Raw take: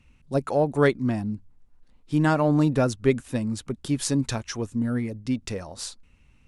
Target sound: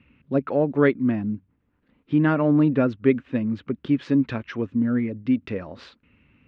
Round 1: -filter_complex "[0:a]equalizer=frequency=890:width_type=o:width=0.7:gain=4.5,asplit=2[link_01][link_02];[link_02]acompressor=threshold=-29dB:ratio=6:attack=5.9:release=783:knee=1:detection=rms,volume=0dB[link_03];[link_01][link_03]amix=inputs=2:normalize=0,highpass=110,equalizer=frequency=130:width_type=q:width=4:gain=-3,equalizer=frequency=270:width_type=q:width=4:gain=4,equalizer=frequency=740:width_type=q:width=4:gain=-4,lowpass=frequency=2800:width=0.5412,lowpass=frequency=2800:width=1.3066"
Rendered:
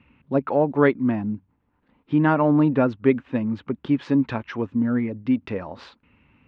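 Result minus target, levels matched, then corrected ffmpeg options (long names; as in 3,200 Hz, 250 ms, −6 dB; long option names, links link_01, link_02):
1,000 Hz band +5.0 dB
-filter_complex "[0:a]equalizer=frequency=890:width_type=o:width=0.7:gain=-4.5,asplit=2[link_01][link_02];[link_02]acompressor=threshold=-29dB:ratio=6:attack=5.9:release=783:knee=1:detection=rms,volume=0dB[link_03];[link_01][link_03]amix=inputs=2:normalize=0,highpass=110,equalizer=frequency=130:width_type=q:width=4:gain=-3,equalizer=frequency=270:width_type=q:width=4:gain=4,equalizer=frequency=740:width_type=q:width=4:gain=-4,lowpass=frequency=2800:width=0.5412,lowpass=frequency=2800:width=1.3066"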